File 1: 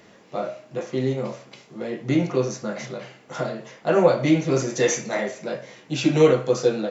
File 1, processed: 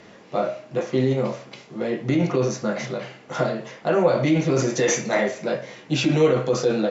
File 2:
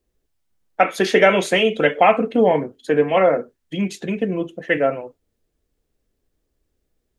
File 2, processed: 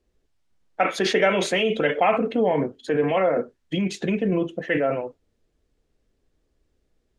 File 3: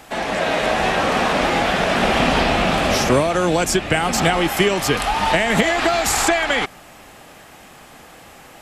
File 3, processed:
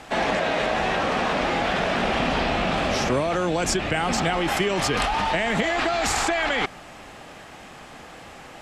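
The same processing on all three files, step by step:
Bessel low-pass 6.2 kHz, order 2; in parallel at -1 dB: compressor with a negative ratio -23 dBFS, ratio -0.5; on the sum: normalise loudness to -23 LUFS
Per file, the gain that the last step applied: -2.5 dB, -6.5 dB, -8.0 dB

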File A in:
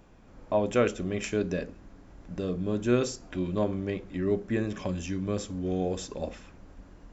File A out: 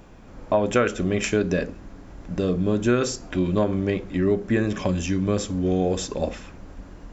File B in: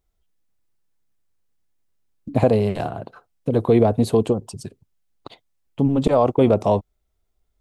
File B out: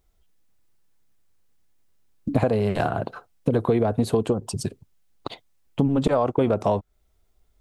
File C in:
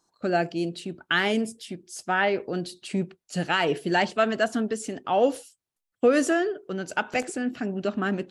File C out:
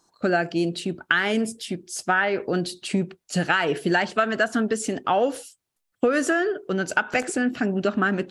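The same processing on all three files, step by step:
dynamic bell 1.5 kHz, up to +7 dB, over -42 dBFS, Q 2; compression 5:1, threshold -25 dBFS; normalise loudness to -24 LUFS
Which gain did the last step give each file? +8.5 dB, +6.5 dB, +6.5 dB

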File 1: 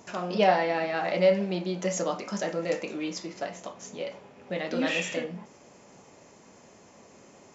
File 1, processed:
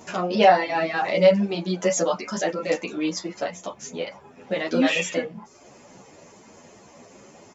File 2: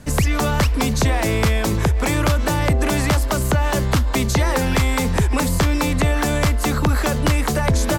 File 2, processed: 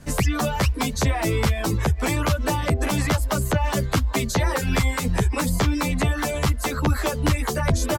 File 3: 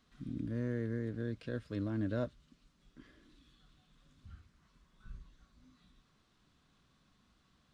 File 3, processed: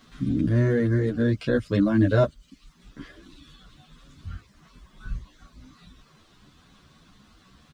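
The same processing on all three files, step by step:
reverb removal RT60 0.66 s; endless flanger 10.4 ms +2.6 Hz; normalise loudness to -23 LUFS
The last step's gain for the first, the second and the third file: +9.5 dB, +0.5 dB, +20.0 dB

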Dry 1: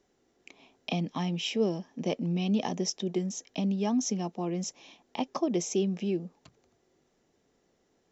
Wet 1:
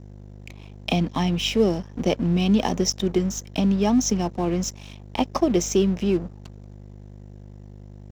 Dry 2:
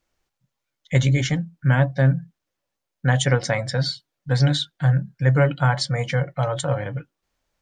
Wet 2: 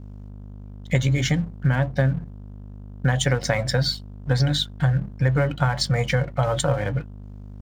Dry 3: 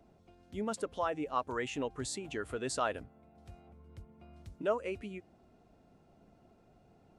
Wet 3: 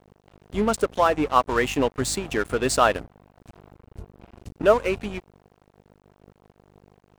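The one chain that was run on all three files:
compression 10:1, threshold -21 dBFS; hum 50 Hz, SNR 12 dB; crossover distortion -47.5 dBFS; normalise loudness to -23 LUFS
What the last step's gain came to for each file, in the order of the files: +9.0 dB, +5.0 dB, +15.0 dB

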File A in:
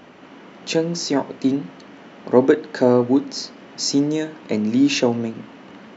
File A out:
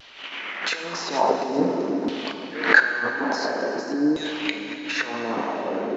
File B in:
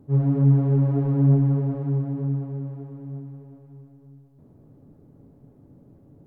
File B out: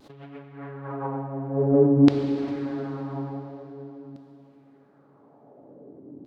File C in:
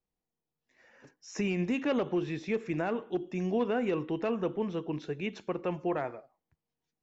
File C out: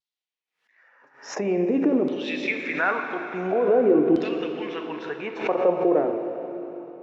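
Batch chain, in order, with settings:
Bessel high-pass 170 Hz; gate -43 dBFS, range -9 dB; dynamic bell 2.9 kHz, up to -4 dB, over -49 dBFS, Q 2.3; compressor with a negative ratio -31 dBFS, ratio -1; LFO band-pass saw down 0.48 Hz 270–4200 Hz; vibrato 0.6 Hz 26 cents; plate-style reverb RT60 3.6 s, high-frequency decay 0.95×, DRR 4.5 dB; swell ahead of each attack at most 120 dB/s; normalise loudness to -24 LUFS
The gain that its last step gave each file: +14.0 dB, +17.0 dB, +17.0 dB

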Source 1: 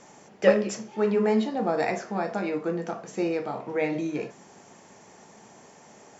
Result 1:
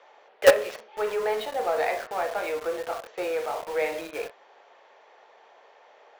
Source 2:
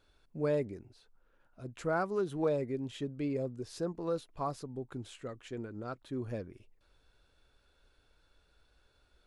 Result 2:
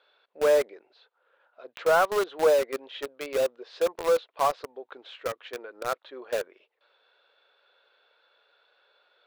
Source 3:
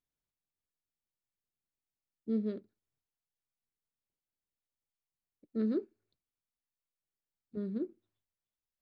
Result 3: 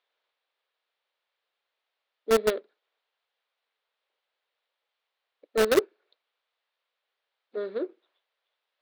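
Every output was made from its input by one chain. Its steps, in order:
elliptic band-pass 490–3800 Hz, stop band 70 dB; in parallel at -10.5 dB: companded quantiser 2-bit; on the sum: normalise loudness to -27 LUFS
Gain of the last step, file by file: -0.5 dB, +8.5 dB, +18.0 dB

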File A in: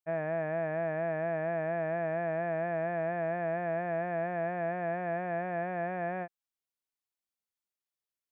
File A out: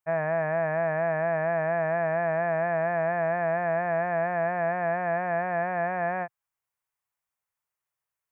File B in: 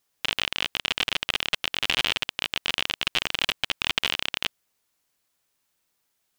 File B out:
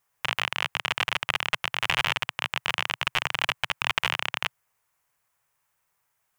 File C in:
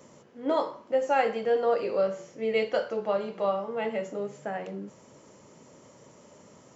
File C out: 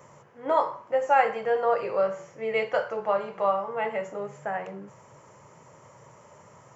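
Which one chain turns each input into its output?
graphic EQ 125/250/1000/2000/4000 Hz +8/-11/+7/+4/-8 dB; normalise loudness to -27 LUFS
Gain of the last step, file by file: +4.0 dB, -0.5 dB, +0.5 dB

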